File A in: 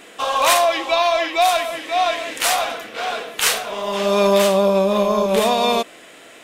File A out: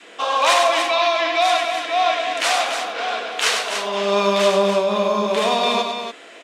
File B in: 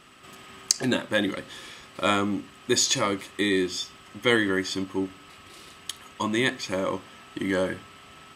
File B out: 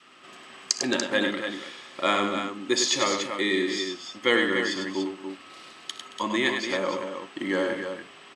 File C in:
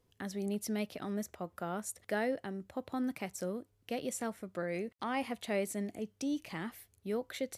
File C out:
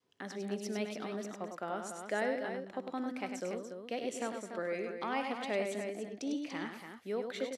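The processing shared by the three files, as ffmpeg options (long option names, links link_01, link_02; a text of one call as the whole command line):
ffmpeg -i in.wav -filter_complex "[0:a]adynamicequalizer=threshold=0.0251:dfrequency=530:dqfactor=1.3:tfrequency=530:tqfactor=1.3:attack=5:release=100:ratio=0.375:range=2.5:mode=cutabove:tftype=bell,highpass=260,lowpass=6200,asplit=2[link_01][link_02];[link_02]aecho=0:1:62|80|100|223|289:0.133|0.106|0.501|0.133|0.422[link_03];[link_01][link_03]amix=inputs=2:normalize=0" out.wav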